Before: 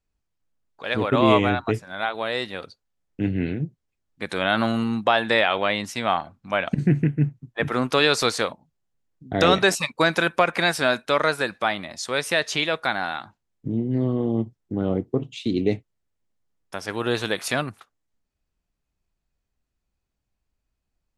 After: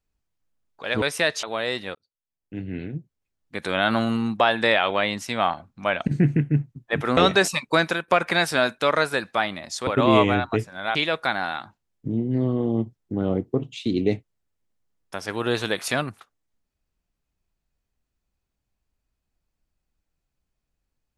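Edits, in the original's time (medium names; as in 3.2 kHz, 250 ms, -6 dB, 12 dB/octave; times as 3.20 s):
1.02–2.10 s: swap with 12.14–12.55 s
2.62–4.37 s: fade in
7.84–9.44 s: delete
10.10–10.35 s: fade out, to -14.5 dB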